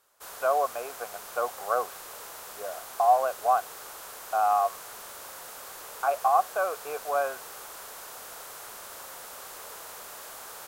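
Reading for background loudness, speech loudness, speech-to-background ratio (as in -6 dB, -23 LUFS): -41.0 LUFS, -27.5 LUFS, 13.5 dB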